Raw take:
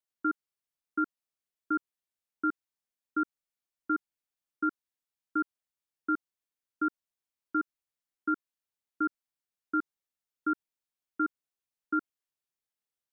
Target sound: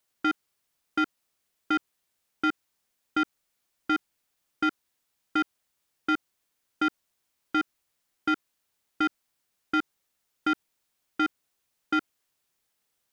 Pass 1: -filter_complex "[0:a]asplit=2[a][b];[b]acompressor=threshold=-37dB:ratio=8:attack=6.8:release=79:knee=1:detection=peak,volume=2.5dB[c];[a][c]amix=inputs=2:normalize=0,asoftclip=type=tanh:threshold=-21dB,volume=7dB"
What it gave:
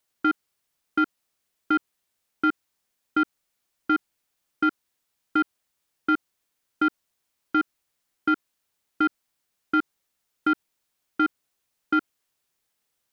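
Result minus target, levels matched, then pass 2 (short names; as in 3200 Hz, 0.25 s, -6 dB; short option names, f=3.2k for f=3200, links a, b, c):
soft clip: distortion -7 dB
-filter_complex "[0:a]asplit=2[a][b];[b]acompressor=threshold=-37dB:ratio=8:attack=6.8:release=79:knee=1:detection=peak,volume=2.5dB[c];[a][c]amix=inputs=2:normalize=0,asoftclip=type=tanh:threshold=-27dB,volume=7dB"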